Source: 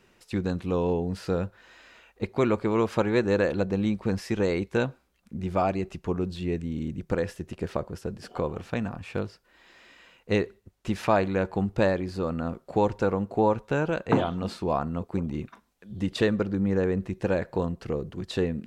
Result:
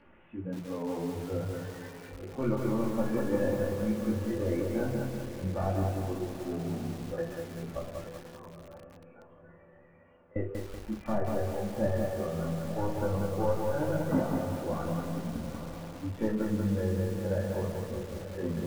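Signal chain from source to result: delta modulation 16 kbps, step -31.5 dBFS; air absorption 440 m; shoebox room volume 3200 m³, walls furnished, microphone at 2.4 m; chorus 0.13 Hz, delay 17.5 ms, depth 6.2 ms; spectral noise reduction 14 dB; 8.07–10.36 ladder band-pass 1100 Hz, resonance 45%; diffused feedback echo 0.929 s, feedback 42%, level -10.5 dB; lo-fi delay 0.189 s, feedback 55%, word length 7-bit, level -3 dB; gain -4.5 dB

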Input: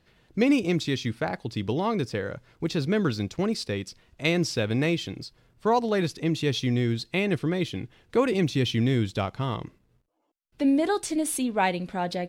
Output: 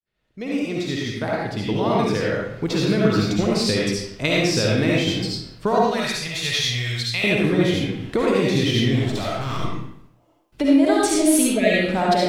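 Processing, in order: opening faded in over 3.40 s; 5.89–7.24 passive tone stack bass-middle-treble 10-0-10; 11.29–11.84 spectral repair 720–1600 Hz; compressor, threshold -28 dBFS, peak gain reduction 11 dB; 8.94–9.62 overloaded stage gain 36 dB; digital reverb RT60 0.7 s, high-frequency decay 0.85×, pre-delay 30 ms, DRR -4.5 dB; gain +8.5 dB

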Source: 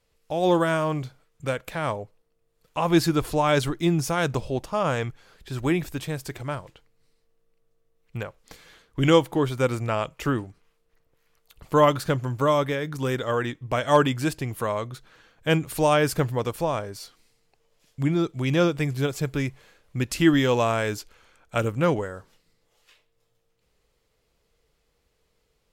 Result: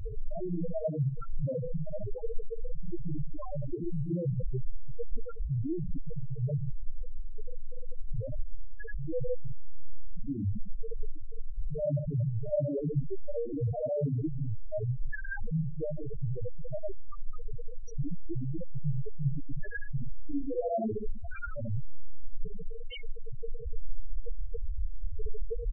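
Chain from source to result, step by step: infinite clipping; on a send: feedback echo 68 ms, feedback 38%, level -7 dB; on the sum: Schroeder reverb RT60 1.9 s, combs from 28 ms, DRR 0.5 dB; loudest bins only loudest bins 2

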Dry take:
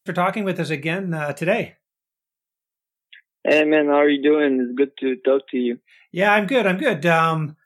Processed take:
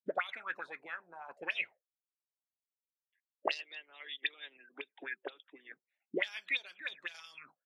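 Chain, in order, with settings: auto-wah 230–4600 Hz, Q 7.3, up, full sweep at -13.5 dBFS; random-step tremolo; harmonic-percussive split harmonic -17 dB; gain +3 dB

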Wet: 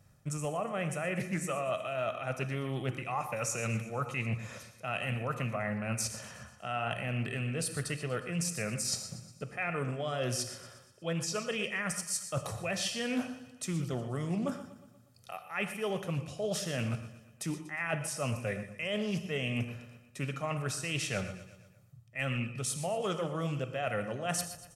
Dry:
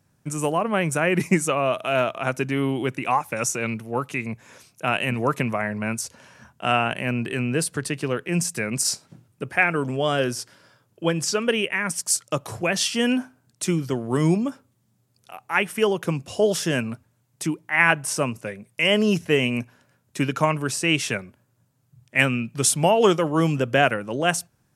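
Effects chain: low shelf 63 Hz +9.5 dB; comb 1.6 ms, depth 51%; reverse; compressor 12:1, threshold -31 dBFS, peak gain reduction 20 dB; reverse; feedback echo 0.12 s, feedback 55%, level -15 dB; non-linear reverb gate 0.17 s flat, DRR 8.5 dB; Doppler distortion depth 0.18 ms

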